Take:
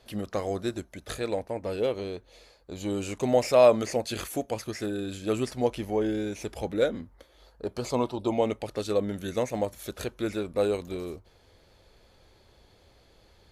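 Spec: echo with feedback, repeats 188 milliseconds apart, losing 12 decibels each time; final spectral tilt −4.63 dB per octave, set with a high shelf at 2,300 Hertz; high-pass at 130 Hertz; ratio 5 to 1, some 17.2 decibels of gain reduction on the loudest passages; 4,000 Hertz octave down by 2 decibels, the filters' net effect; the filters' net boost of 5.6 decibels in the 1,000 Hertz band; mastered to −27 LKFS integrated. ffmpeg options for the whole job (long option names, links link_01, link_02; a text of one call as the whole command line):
ffmpeg -i in.wav -af "highpass=130,equalizer=frequency=1000:width_type=o:gain=7,highshelf=frequency=2300:gain=3.5,equalizer=frequency=4000:width_type=o:gain=-6,acompressor=threshold=-30dB:ratio=5,aecho=1:1:188|376|564:0.251|0.0628|0.0157,volume=8.5dB" out.wav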